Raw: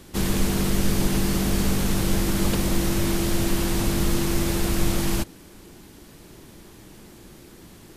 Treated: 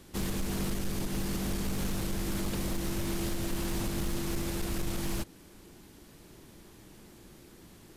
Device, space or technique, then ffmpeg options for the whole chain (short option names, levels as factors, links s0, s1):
limiter into clipper: -af "alimiter=limit=0.188:level=0:latency=1:release=172,asoftclip=type=hard:threshold=0.106,volume=0.447"